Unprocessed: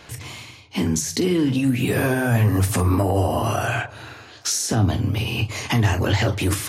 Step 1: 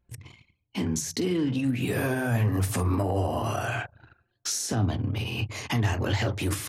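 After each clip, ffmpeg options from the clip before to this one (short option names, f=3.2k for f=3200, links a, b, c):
-af "anlmdn=15.8,volume=-6.5dB"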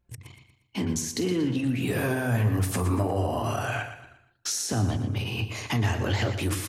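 -af "aecho=1:1:118|236|354|472:0.299|0.119|0.0478|0.0191"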